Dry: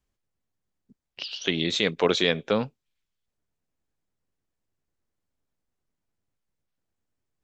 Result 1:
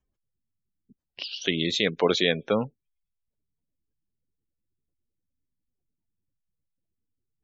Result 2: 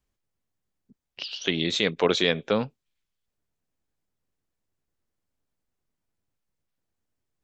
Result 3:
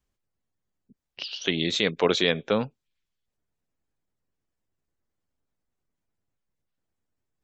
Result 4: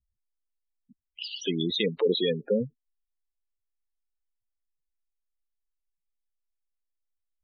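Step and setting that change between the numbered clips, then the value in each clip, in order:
spectral gate, under each frame's peak: -25, -55, -40, -10 dB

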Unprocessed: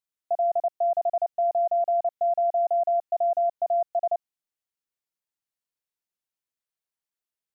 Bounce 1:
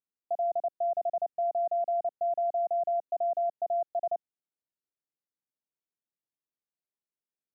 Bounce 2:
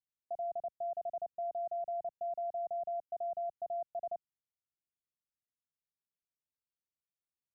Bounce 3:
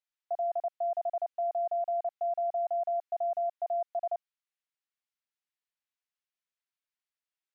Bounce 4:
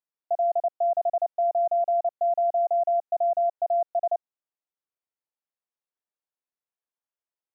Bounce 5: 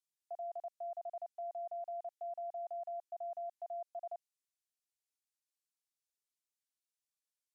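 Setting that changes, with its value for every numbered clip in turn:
band-pass, frequency: 270, 100, 2200, 680, 7500 Hz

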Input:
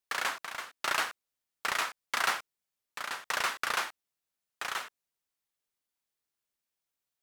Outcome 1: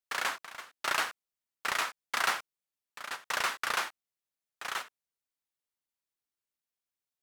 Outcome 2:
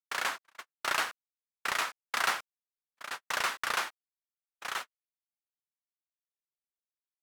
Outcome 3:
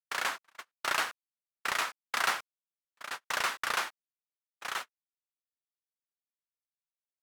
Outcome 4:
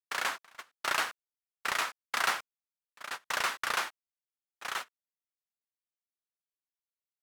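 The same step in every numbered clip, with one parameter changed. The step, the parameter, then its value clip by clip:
gate, range: -6, -51, -34, -18 dB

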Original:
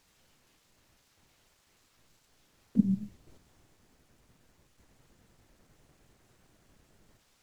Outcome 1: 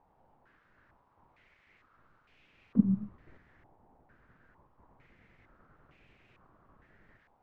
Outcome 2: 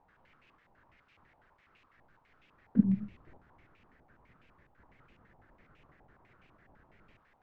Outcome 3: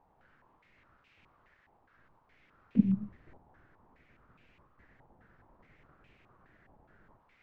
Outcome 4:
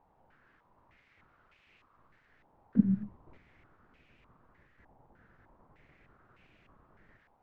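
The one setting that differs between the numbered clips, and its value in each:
stepped low-pass, rate: 2.2, 12, 4.8, 3.3 Hz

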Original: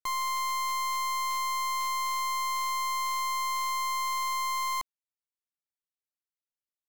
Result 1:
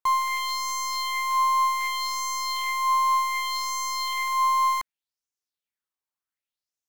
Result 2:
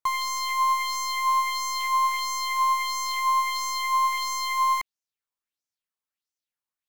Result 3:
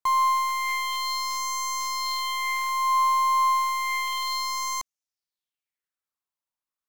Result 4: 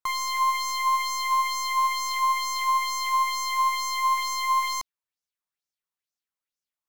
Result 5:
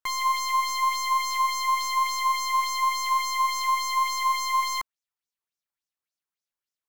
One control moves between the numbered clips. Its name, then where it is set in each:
LFO bell, rate: 0.66, 1.5, 0.31, 2.2, 3.5 Hz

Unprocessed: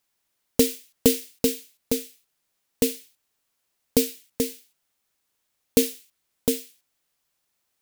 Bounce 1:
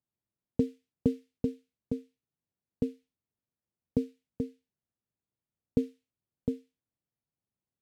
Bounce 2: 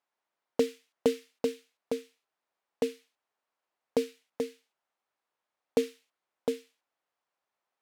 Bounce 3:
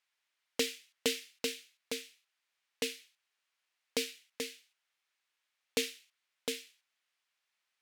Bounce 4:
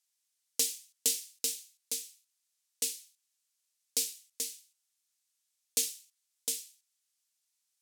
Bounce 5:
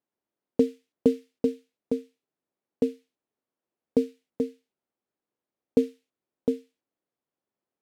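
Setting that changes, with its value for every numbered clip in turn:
band-pass, frequency: 120, 840, 2200, 7300, 330 Hz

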